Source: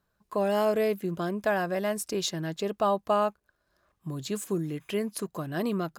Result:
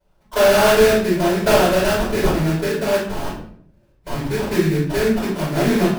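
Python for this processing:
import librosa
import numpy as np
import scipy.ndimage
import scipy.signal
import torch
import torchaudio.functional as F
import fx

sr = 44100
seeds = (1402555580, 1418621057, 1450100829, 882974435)

y = fx.spec_box(x, sr, start_s=2.5, length_s=2.01, low_hz=600.0, high_hz=6800.0, gain_db=-14)
y = fx.sample_hold(y, sr, seeds[0], rate_hz=2100.0, jitter_pct=20)
y = fx.overflow_wrap(y, sr, gain_db=33.0, at=(3.05, 4.14))
y = fx.room_shoebox(y, sr, seeds[1], volume_m3=95.0, walls='mixed', distance_m=4.7)
y = F.gain(torch.from_numpy(y), -4.0).numpy()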